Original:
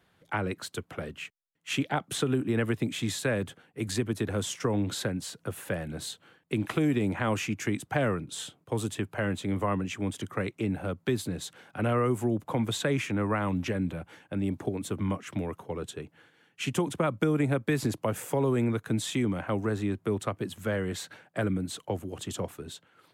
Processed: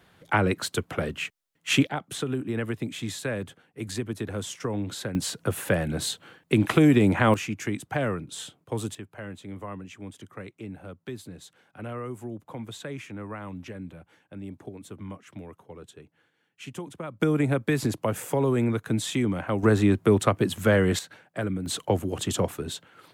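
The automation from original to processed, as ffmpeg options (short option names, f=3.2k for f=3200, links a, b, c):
-af "asetnsamples=n=441:p=0,asendcmd='1.87 volume volume -2dB;5.15 volume volume 8dB;7.34 volume volume 0dB;8.95 volume volume -9dB;17.2 volume volume 2.5dB;19.63 volume volume 9.5dB;20.99 volume volume -0.5dB;21.66 volume volume 8dB',volume=8dB"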